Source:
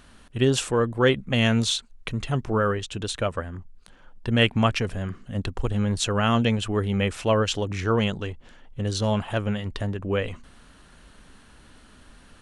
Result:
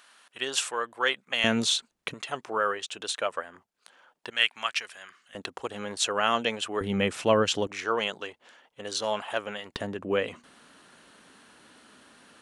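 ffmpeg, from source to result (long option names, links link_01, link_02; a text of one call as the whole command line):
ffmpeg -i in.wav -af "asetnsamples=nb_out_samples=441:pad=0,asendcmd='1.44 highpass f 250;2.14 highpass f 600;4.3 highpass f 1500;5.35 highpass f 480;6.81 highpass f 180;7.67 highpass f 540;9.76 highpass f 250',highpass=900" out.wav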